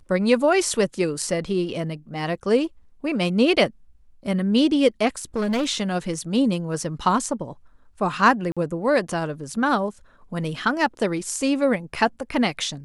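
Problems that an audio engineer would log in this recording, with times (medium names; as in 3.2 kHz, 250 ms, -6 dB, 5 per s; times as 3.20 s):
5.22–5.67 s: clipped -19.5 dBFS
8.52–8.57 s: dropout 46 ms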